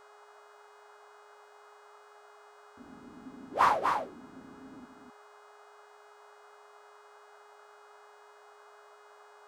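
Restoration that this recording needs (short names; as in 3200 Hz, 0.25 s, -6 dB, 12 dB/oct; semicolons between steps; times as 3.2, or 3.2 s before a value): de-hum 416 Hz, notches 22; noise print and reduce 30 dB; inverse comb 0.246 s -5 dB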